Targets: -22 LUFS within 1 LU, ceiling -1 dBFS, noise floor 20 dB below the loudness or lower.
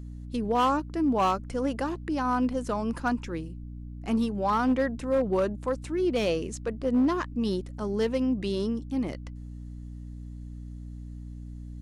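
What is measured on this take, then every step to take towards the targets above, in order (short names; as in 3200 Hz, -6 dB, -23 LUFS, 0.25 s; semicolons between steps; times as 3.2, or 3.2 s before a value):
clipped 0.6%; flat tops at -18.5 dBFS; hum 60 Hz; harmonics up to 300 Hz; hum level -38 dBFS; loudness -28.0 LUFS; peak -18.5 dBFS; loudness target -22.0 LUFS
-> clip repair -18.5 dBFS; notches 60/120/180/240/300 Hz; gain +6 dB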